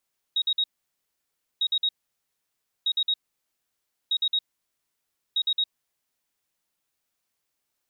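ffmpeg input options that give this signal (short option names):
-f lavfi -i "aevalsrc='0.0944*sin(2*PI*3780*t)*clip(min(mod(mod(t,1.25),0.11),0.06-mod(mod(t,1.25),0.11))/0.005,0,1)*lt(mod(t,1.25),0.33)':d=6.25:s=44100"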